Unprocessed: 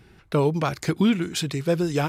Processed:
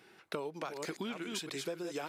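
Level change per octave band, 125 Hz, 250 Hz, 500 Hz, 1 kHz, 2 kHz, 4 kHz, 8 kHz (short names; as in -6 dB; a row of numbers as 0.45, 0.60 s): -26.0, -19.0, -14.5, -14.0, -11.0, -10.5, -10.0 dB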